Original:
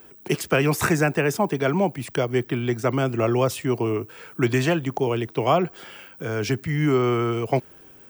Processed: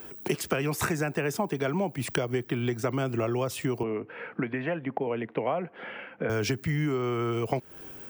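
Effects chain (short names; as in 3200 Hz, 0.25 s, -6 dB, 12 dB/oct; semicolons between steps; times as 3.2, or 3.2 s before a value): compressor 12:1, threshold -29 dBFS, peak gain reduction 15.5 dB; 3.83–6.3 speaker cabinet 190–2400 Hz, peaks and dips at 220 Hz +4 dB, 360 Hz -6 dB, 520 Hz +4 dB, 1200 Hz -4 dB, 2000 Hz +3 dB; gain +4.5 dB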